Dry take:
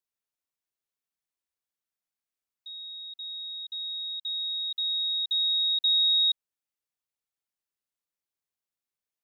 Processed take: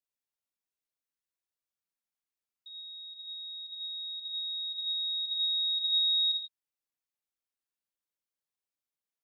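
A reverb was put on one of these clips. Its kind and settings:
reverb whose tail is shaped and stops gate 170 ms flat, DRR 4.5 dB
level −5.5 dB

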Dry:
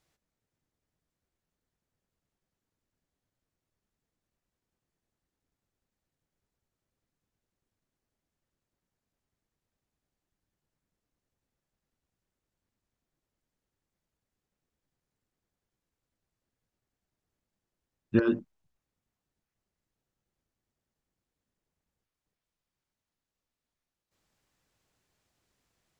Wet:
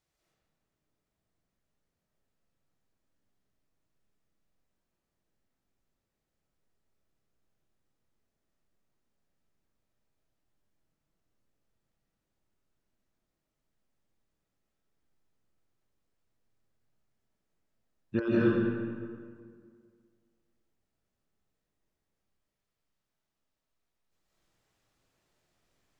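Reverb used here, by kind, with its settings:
comb and all-pass reverb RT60 2 s, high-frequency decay 0.6×, pre-delay 115 ms, DRR −8 dB
level −6.5 dB

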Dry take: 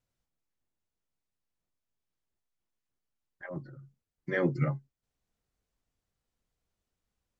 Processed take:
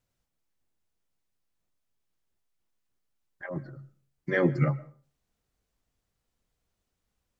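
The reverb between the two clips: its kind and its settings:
comb and all-pass reverb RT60 0.42 s, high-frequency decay 0.65×, pre-delay 85 ms, DRR 19.5 dB
level +4 dB

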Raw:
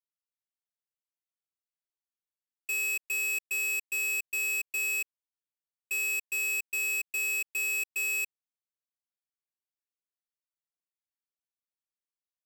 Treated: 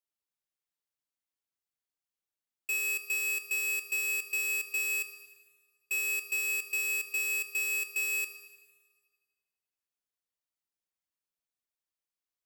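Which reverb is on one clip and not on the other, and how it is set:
four-comb reverb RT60 1.5 s, combs from 26 ms, DRR 9.5 dB

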